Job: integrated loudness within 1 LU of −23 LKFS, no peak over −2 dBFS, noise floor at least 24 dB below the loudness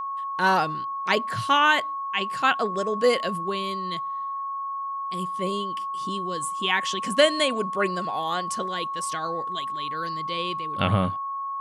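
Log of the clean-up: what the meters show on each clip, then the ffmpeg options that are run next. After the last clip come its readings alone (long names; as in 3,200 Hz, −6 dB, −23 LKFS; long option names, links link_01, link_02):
interfering tone 1,100 Hz; level of the tone −28 dBFS; integrated loudness −25.5 LKFS; sample peak −5.5 dBFS; target loudness −23.0 LKFS
→ -af "bandreject=frequency=1100:width=30"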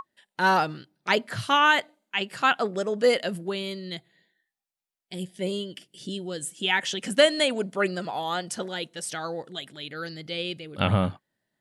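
interfering tone none found; integrated loudness −26.0 LKFS; sample peak −6.5 dBFS; target loudness −23.0 LKFS
→ -af "volume=3dB"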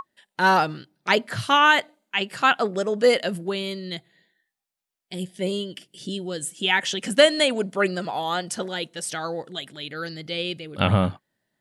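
integrated loudness −23.0 LKFS; sample peak −3.5 dBFS; background noise floor −84 dBFS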